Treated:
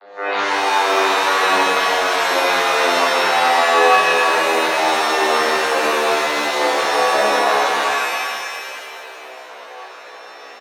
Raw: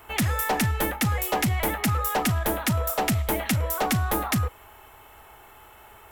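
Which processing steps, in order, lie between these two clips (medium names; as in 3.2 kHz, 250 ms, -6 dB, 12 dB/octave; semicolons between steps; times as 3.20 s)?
vocoder on a note that slides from F3, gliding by -9 st; speed mistake 78 rpm record played at 45 rpm; Bessel high-pass 730 Hz, order 4; speakerphone echo 300 ms, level -9 dB; loudness maximiser +33 dB; pitch-shifted reverb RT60 2.1 s, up +7 st, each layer -2 dB, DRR -7 dB; trim -15.5 dB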